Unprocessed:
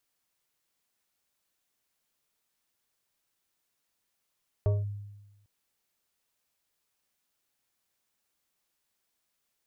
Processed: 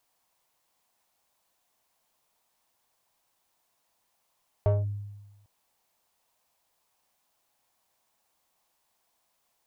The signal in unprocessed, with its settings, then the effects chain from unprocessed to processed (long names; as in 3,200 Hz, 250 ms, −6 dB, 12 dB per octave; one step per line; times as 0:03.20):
two-operator FM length 0.80 s, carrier 102 Hz, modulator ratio 5.04, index 0.54, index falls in 0.19 s linear, decay 1.10 s, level −20 dB
flat-topped bell 770 Hz +9 dB 1.2 octaves
notch filter 580 Hz, Q 12
in parallel at −4 dB: soft clipping −32 dBFS